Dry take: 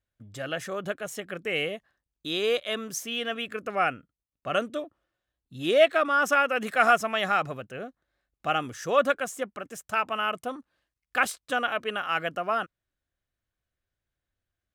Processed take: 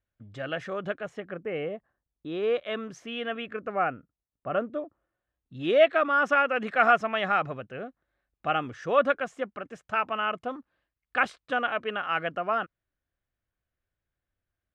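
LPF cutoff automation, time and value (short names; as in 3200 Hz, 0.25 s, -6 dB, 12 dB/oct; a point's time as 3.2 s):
0.94 s 3000 Hz
1.42 s 1200 Hz
2.27 s 1200 Hz
2.75 s 2300 Hz
3.41 s 2300 Hz
3.92 s 1300 Hz
4.76 s 1300 Hz
5.61 s 2800 Hz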